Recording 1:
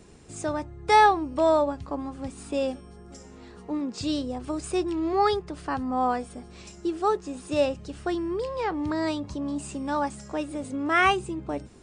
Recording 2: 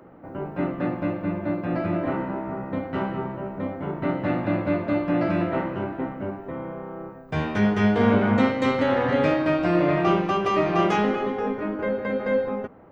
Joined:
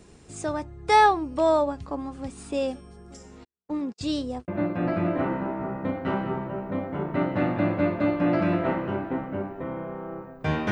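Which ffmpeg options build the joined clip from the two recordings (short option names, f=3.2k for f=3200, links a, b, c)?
-filter_complex "[0:a]asplit=3[a][b][c];[a]afade=t=out:st=3.43:d=0.02[d];[b]agate=range=-53dB:threshold=-36dB:ratio=16:release=100:detection=peak,afade=t=in:st=3.43:d=0.02,afade=t=out:st=4.48:d=0.02[e];[c]afade=t=in:st=4.48:d=0.02[f];[d][e][f]amix=inputs=3:normalize=0,apad=whole_dur=10.71,atrim=end=10.71,atrim=end=4.482[g];[1:a]atrim=start=1.358:end=7.59[h];[g][h]acrossfade=d=0.004:c1=hsin:c2=hsin"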